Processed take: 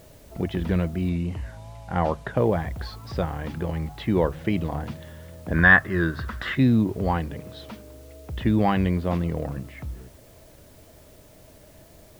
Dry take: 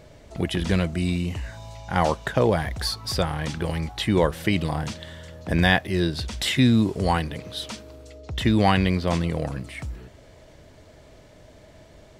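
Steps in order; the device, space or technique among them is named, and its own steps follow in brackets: cassette deck with a dirty head (tape spacing loss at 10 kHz 34 dB; wow and flutter; white noise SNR 31 dB); notches 50/100/150 Hz; 1.09–2.37 LPF 9600 Hz 12 dB/oct; 5.54–6.55 band shelf 1400 Hz +15 dB 1 oct

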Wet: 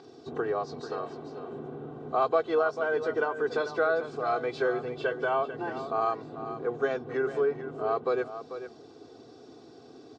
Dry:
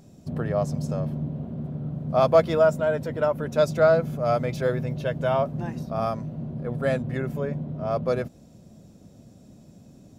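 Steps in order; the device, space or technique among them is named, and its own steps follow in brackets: 0.8–1.52 low shelf 410 Hz -9.5 dB; hearing aid with frequency lowering (nonlinear frequency compression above 3000 Hz 1.5:1; compressor 2.5:1, threshold -34 dBFS, peak gain reduction 14.5 dB; speaker cabinet 300–6800 Hz, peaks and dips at 430 Hz +7 dB, 980 Hz +9 dB, 1400 Hz +9 dB, 3800 Hz +5 dB); low shelf 450 Hz +4 dB; comb 2.6 ms, depth 98%; echo 0.442 s -11 dB

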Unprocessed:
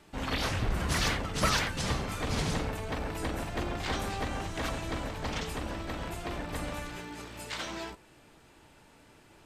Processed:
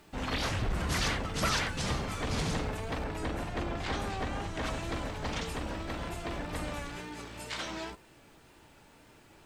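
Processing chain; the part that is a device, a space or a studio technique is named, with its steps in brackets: compact cassette (soft clip -22 dBFS, distortion -19 dB; LPF 11000 Hz 12 dB/oct; wow and flutter; white noise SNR 39 dB); 3.04–4.67 high shelf 4300 Hz -5 dB

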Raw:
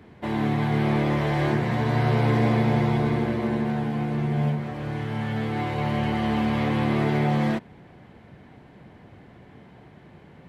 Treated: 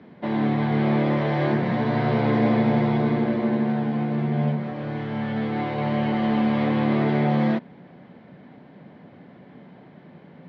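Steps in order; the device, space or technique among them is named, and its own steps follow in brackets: kitchen radio (speaker cabinet 160–4500 Hz, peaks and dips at 170 Hz +8 dB, 250 Hz +6 dB, 570 Hz +5 dB, 2700 Hz -3 dB)

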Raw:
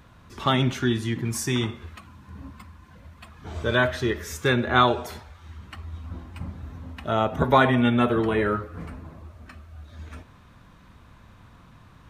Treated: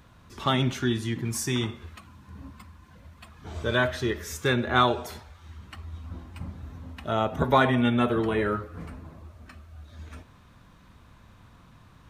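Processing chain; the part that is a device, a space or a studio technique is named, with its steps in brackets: exciter from parts (in parallel at -10 dB: HPF 2600 Hz 12 dB/oct + soft clip -26.5 dBFS, distortion -12 dB); on the sum: gain -2.5 dB

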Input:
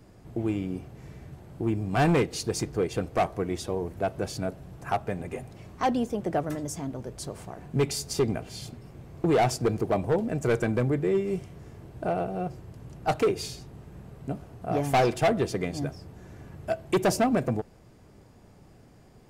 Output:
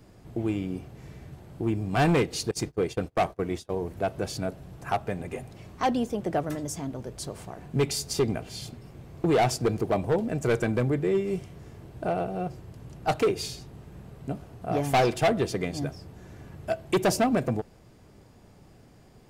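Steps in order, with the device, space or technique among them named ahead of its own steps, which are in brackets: presence and air boost (bell 3600 Hz +2.5 dB 1.2 oct; high shelf 11000 Hz +2.5 dB); 2.51–3.82 gate -31 dBFS, range -27 dB

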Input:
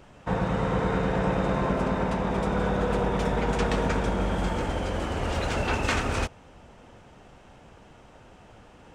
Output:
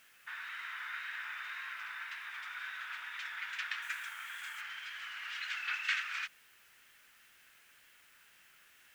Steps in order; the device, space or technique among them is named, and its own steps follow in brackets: steep high-pass 1600 Hz 36 dB/oct; cassette deck with a dirty head (tape spacing loss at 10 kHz 27 dB; wow and flutter; white noise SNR 24 dB); 3.82–4.61 resonant high shelf 6300 Hz +8 dB, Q 1.5; gain +4 dB

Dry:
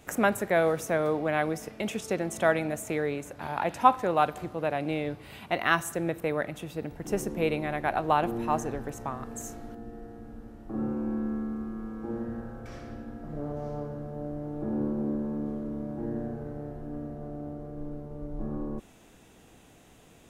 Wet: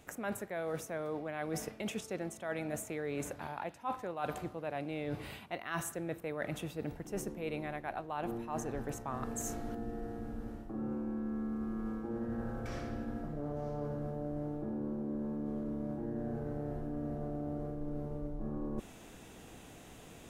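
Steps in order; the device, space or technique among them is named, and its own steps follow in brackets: compression on the reversed sound (reverse; compressor 20:1, threshold -37 dBFS, peak gain reduction 25.5 dB; reverse); gain +3 dB

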